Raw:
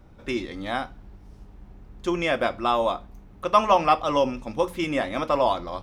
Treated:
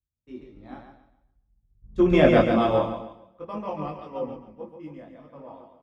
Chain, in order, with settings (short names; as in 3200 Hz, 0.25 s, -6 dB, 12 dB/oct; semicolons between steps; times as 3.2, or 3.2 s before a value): Doppler pass-by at 2.24, 15 m/s, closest 4.9 m; dynamic EQ 1000 Hz, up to -5 dB, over -37 dBFS, Q 0.83; LPF 1400 Hz 6 dB/oct; low shelf 460 Hz +10 dB; in parallel at +1 dB: compressor 6:1, threshold -45 dBFS, peak gain reduction 24.5 dB; on the sum: HPF 81 Hz 12 dB/oct; upward compressor, threshold -45 dBFS; gate -41 dBFS, range -12 dB; on a send: feedback echo 0.14 s, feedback 53%, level -4 dB; on the sum: chorus voices 6, 0.48 Hz, delay 23 ms, depth 4.4 ms; three-band expander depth 100%